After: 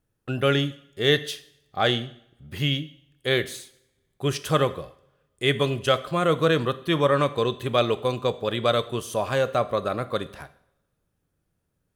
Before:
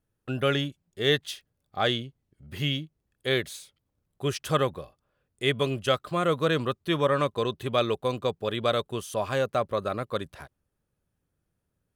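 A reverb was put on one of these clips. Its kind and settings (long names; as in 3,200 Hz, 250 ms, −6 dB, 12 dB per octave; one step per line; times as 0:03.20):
coupled-rooms reverb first 0.63 s, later 1.8 s, from −26 dB, DRR 12.5 dB
level +3 dB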